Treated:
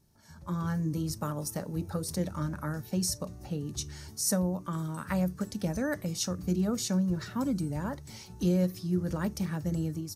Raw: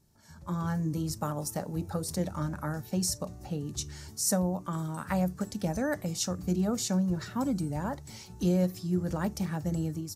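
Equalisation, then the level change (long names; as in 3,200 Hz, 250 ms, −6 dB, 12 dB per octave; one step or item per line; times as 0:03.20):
notch filter 7,400 Hz, Q 9.2
dynamic equaliser 760 Hz, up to −7 dB, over −51 dBFS, Q 3.1
0.0 dB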